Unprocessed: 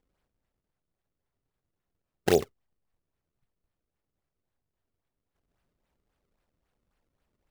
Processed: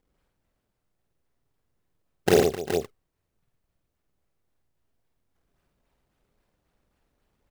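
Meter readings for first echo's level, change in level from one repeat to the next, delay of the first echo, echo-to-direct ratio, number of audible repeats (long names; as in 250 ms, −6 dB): −3.0 dB, repeats not evenly spaced, 50 ms, 0.5 dB, 4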